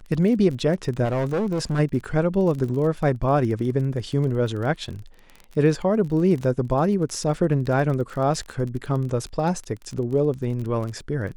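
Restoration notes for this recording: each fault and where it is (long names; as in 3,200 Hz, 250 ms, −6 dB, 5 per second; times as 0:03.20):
surface crackle 28 per second −30 dBFS
0:01.04–0:01.80: clipping −20 dBFS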